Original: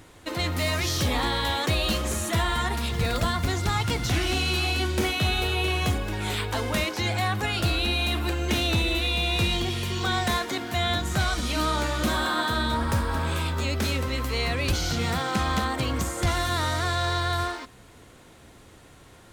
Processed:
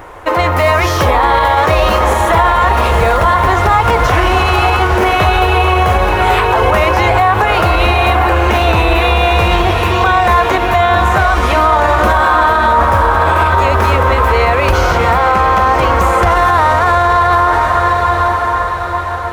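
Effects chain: ten-band EQ 125 Hz -8 dB, 250 Hz -10 dB, 500 Hz +4 dB, 1000 Hz +8 dB, 4000 Hz -11 dB, 8000 Hz -9 dB, 16000 Hz -9 dB; diffused feedback echo 0.907 s, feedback 52%, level -7 dB; maximiser +18.5 dB; gain -1 dB

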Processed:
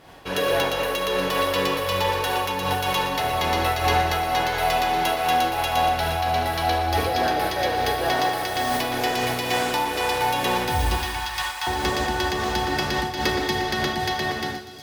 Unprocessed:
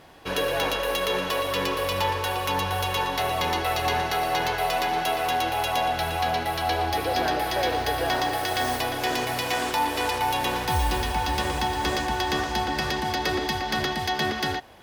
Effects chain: ending faded out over 0.73 s; 10.95–11.67 HPF 890 Hz 24 dB/oct; in parallel at -10.5 dB: one-sided clip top -22 dBFS; on the sum: thin delay 0.829 s, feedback 63%, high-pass 4100 Hz, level -12 dB; on a send at -4 dB: reverb RT60 1.3 s, pre-delay 32 ms; on the sum: noise-modulated level, depth 65%; gain +1.5 dB

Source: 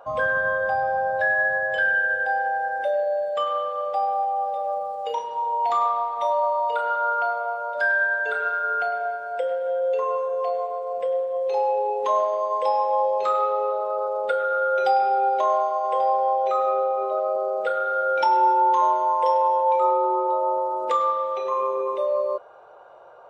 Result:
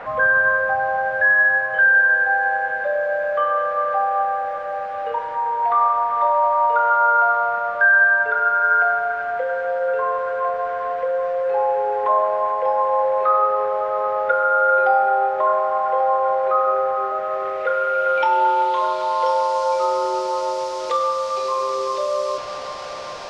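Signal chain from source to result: delta modulation 64 kbps, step -30.5 dBFS; low-pass sweep 1600 Hz -> 5200 Hz, 17.12–19.58; band-limited delay 0.391 s, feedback 72%, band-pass 1100 Hz, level -10 dB

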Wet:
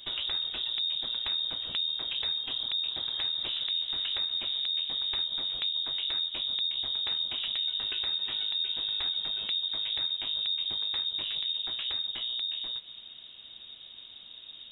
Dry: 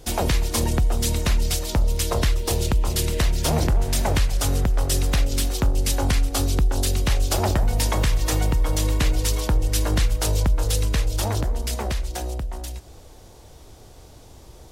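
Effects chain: compressor 4:1, threshold -29 dBFS, peak gain reduction 12 dB; inverted band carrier 3700 Hz; gain -4 dB

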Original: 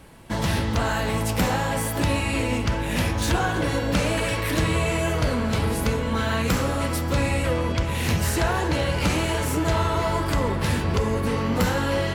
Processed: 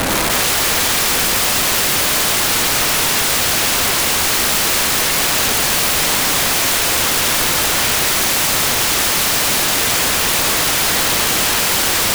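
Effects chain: per-bin compression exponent 0.2; bell 280 Hz +4 dB 1.5 oct; on a send: diffused feedback echo 0.79 s, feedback 42%, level -13 dB; on the sum: Schroeder reverb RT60 1.6 s, combs from 28 ms, DRR -2.5 dB; wrapped overs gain 11 dB

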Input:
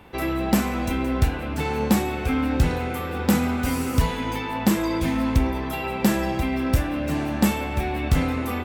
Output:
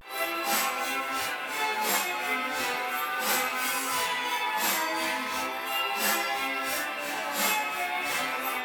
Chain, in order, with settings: phase scrambler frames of 0.2 s; HPF 940 Hz 12 dB/oct; vibrato 0.36 Hz 46 cents; gain +4 dB

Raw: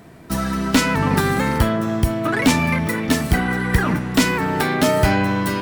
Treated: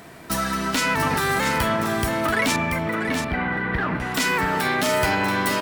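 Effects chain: low shelf 470 Hz -11 dB; in parallel at +1 dB: compressor, threshold -33 dBFS, peak gain reduction 16 dB; on the sum: limiter -12.5 dBFS, peak gain reduction 8 dB; 2.56–4 air absorption 410 m; echo 0.683 s -7 dB

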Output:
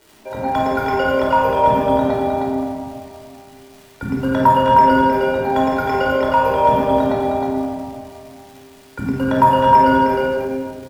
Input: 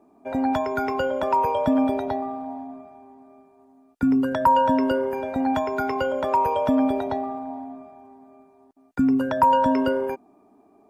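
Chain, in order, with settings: notches 50/100/150/200/250/300/350/400 Hz; echo 0.311 s -4.5 dB; crackle 390/s -38 dBFS; shoebox room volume 2100 m³, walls mixed, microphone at 4.7 m; gain -1 dB

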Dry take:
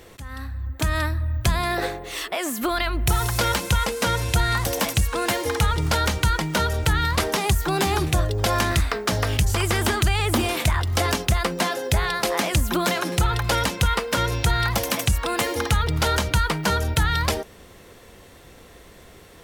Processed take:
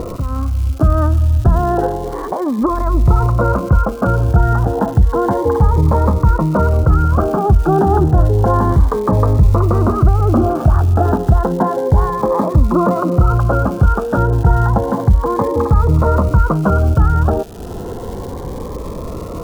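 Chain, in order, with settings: steep low-pass 1300 Hz 48 dB/oct; upward compressor, threshold -24 dBFS; crackle 420/s -39 dBFS; maximiser +13 dB; cascading phaser rising 0.31 Hz; gain -1 dB

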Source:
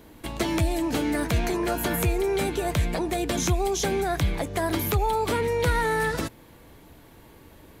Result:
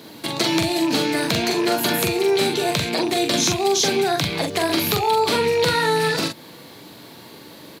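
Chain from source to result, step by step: rattling part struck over -30 dBFS, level -27 dBFS; HPF 130 Hz 24 dB/oct; bell 4300 Hz +12 dB 0.74 oct; in parallel at +2.5 dB: compressor, threshold -32 dBFS, peak gain reduction 12 dB; on the sum: requantised 10-bit, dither none; doubler 43 ms -4 dB

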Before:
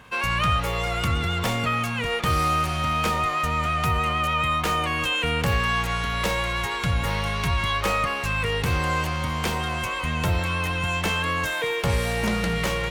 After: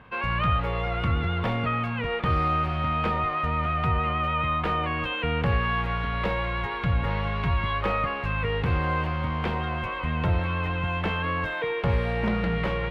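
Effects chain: air absorption 420 m

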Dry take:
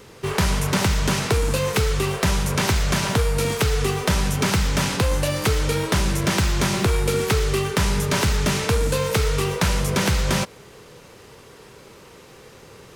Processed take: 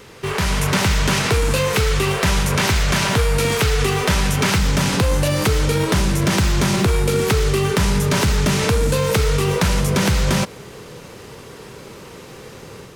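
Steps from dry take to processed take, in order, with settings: bell 2200 Hz +3.5 dB 1.9 oct, from 4.58 s 180 Hz; limiter -16.5 dBFS, peak gain reduction 7 dB; AGC gain up to 4.5 dB; gain +2 dB

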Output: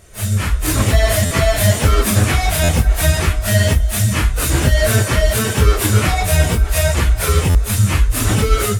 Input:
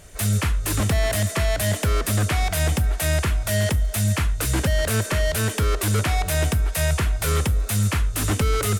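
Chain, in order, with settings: phase scrambler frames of 0.1 s; AGC; stuck buffer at 1.25/2.63/7.49, samples 512, times 4

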